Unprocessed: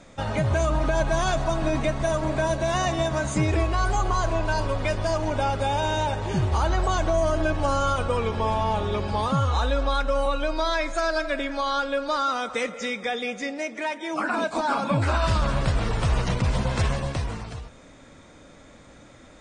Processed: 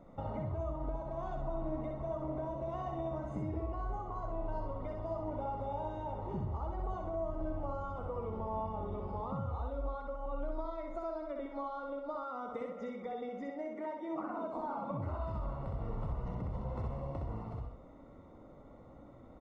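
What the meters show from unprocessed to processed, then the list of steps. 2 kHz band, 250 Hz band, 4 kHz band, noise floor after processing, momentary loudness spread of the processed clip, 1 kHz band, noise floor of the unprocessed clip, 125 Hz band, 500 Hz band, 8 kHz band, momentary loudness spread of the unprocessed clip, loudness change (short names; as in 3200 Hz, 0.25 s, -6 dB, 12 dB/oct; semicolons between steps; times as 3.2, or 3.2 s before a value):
-27.5 dB, -12.5 dB, under -30 dB, -55 dBFS, 4 LU, -15.0 dB, -49 dBFS, -14.5 dB, -13.5 dB, under -35 dB, 5 LU, -14.5 dB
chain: compressor, threshold -30 dBFS, peak gain reduction 12 dB; polynomial smoothing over 65 samples; on a send: feedback echo 64 ms, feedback 32%, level -3.5 dB; on the sum: gain -6.5 dB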